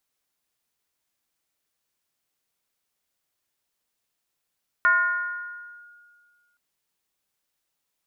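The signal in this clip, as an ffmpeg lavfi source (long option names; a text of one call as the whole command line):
ffmpeg -f lavfi -i "aevalsrc='0.2*pow(10,-3*t/1.89)*sin(2*PI*1430*t+0.72*clip(1-t/1.04,0,1)*sin(2*PI*0.27*1430*t))':duration=1.72:sample_rate=44100" out.wav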